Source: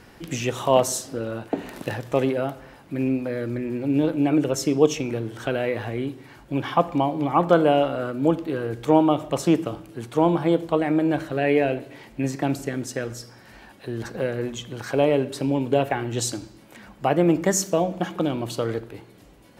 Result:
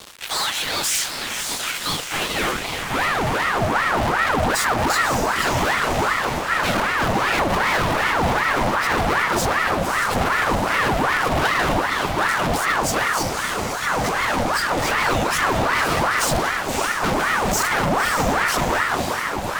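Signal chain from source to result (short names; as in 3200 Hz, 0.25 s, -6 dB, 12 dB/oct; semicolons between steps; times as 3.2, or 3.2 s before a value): phase scrambler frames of 50 ms; low shelf 62 Hz +10 dB; in parallel at +1.5 dB: limiter -14.5 dBFS, peak gain reduction 11 dB; on the sum: power-law curve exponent 0.7; high-pass sweep 2200 Hz -> 170 Hz, 1.95–3.58; fuzz box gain 24 dB, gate -30 dBFS; on a send: diffused feedback echo 0.57 s, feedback 56%, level -5 dB; on the sum: ring modulator with a swept carrier 990 Hz, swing 65%, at 2.6 Hz; gain -4 dB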